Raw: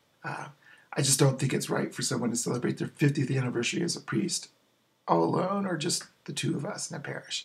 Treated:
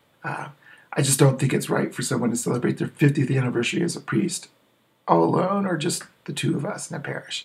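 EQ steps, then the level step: peaking EQ 5.6 kHz -11.5 dB 0.62 oct; +6.5 dB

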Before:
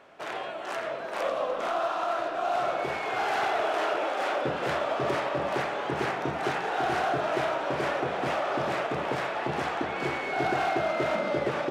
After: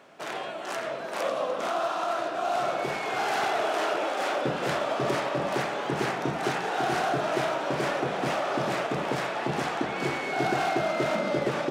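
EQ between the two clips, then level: high-pass 170 Hz 12 dB/octave; tone controls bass +9 dB, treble +7 dB; 0.0 dB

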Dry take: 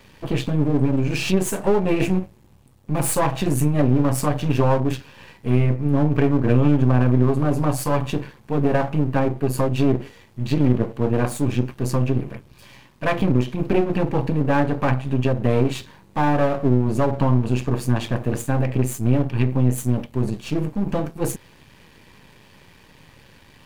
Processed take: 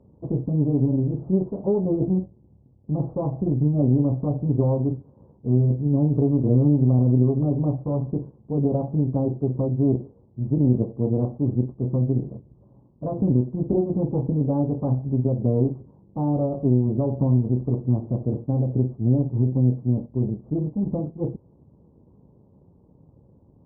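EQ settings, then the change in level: Gaussian low-pass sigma 14 samples; high-pass 55 Hz; distance through air 96 m; 0.0 dB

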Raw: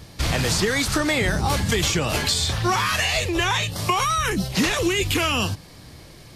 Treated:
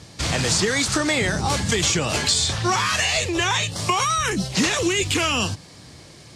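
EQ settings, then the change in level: high-pass 79 Hz; resonant low-pass 7.8 kHz, resonance Q 1.7; 0.0 dB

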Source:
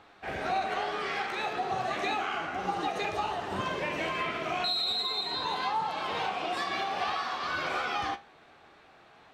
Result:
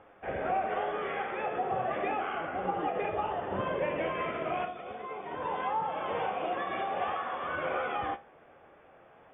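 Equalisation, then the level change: brick-wall FIR low-pass 3.6 kHz; distance through air 450 m; peaking EQ 530 Hz +9.5 dB 0.4 oct; 0.0 dB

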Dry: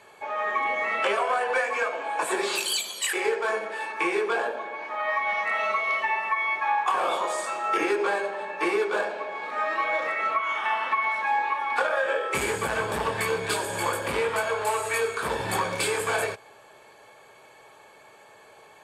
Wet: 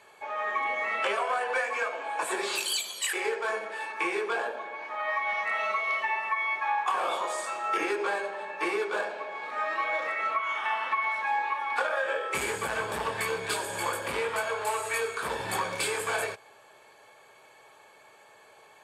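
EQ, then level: bass shelf 470 Hz -5 dB; -2.5 dB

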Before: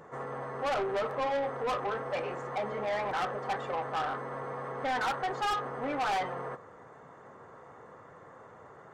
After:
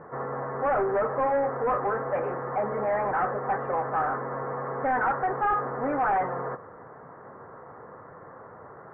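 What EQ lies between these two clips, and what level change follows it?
steep low-pass 1.8 kHz 36 dB/octave; +6.0 dB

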